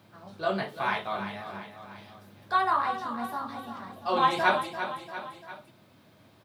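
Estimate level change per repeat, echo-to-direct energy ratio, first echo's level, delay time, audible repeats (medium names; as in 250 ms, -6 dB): -5.0 dB, -8.5 dB, -10.0 dB, 344 ms, 3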